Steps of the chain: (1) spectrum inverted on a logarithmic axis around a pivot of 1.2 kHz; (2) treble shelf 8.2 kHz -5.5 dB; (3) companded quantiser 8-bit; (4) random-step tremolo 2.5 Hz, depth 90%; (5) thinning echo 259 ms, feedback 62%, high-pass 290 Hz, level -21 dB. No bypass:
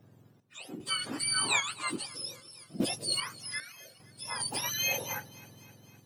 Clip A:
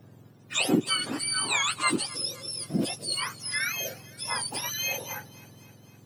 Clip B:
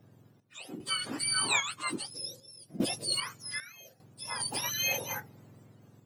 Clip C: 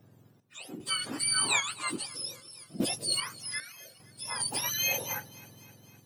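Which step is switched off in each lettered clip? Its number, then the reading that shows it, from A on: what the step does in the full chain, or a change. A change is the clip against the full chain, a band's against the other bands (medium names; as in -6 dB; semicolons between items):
4, momentary loudness spread change -10 LU; 5, echo-to-direct -19.5 dB to none; 2, 8 kHz band +3.0 dB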